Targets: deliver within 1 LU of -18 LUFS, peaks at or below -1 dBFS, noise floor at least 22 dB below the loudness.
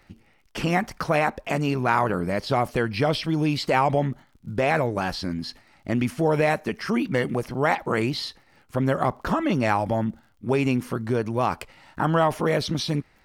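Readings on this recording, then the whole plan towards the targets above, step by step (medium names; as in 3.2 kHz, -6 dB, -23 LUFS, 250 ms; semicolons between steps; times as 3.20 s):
tick rate 49 per s; loudness -24.5 LUFS; peak level -8.0 dBFS; loudness target -18.0 LUFS
-> de-click; trim +6.5 dB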